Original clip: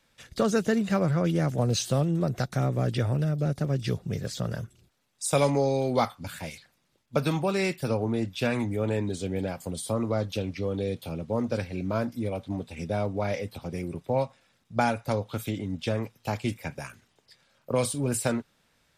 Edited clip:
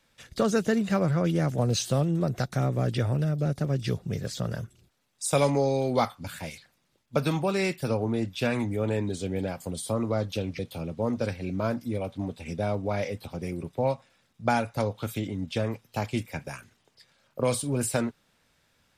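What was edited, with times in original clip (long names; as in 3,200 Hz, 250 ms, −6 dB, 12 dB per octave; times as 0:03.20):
0:10.59–0:10.90: remove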